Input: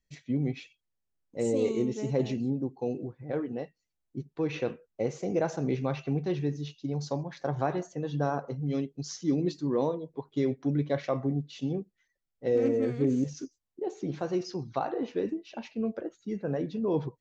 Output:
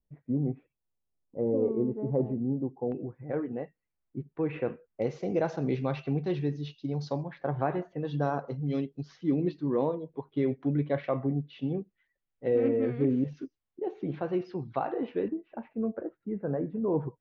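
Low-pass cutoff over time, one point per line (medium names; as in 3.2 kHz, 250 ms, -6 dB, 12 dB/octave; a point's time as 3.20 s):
low-pass 24 dB/octave
1.1 kHz
from 2.92 s 2.3 kHz
from 5.02 s 4.7 kHz
from 7.28 s 2.8 kHz
from 8.05 s 4.7 kHz
from 9.01 s 3.1 kHz
from 15.28 s 1.6 kHz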